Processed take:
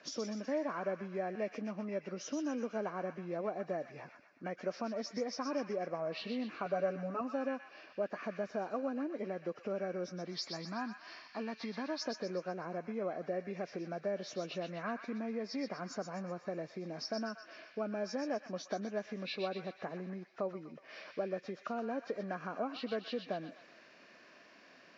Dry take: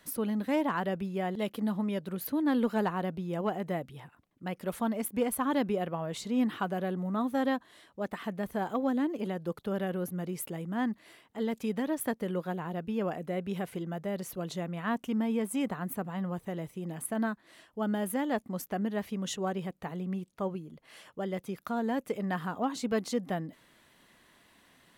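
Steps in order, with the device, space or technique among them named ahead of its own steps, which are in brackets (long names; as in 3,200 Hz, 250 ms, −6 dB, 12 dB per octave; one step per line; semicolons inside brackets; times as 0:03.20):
0:10.26–0:12.02: graphic EQ with 10 bands 500 Hz −10 dB, 1,000 Hz +9 dB, 8,000 Hz +11 dB
hearing aid with frequency lowering (hearing-aid frequency compression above 1,400 Hz 1.5 to 1; downward compressor 3 to 1, threshold −41 dBFS, peak gain reduction 13 dB; loudspeaker in its box 260–5,200 Hz, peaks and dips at 610 Hz +6 dB, 890 Hz −7 dB, 3,200 Hz −3 dB)
0:06.65–0:07.21: comb filter 7 ms, depth 87%
delay with a high-pass on its return 124 ms, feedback 52%, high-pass 1,400 Hz, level −6 dB
level +4 dB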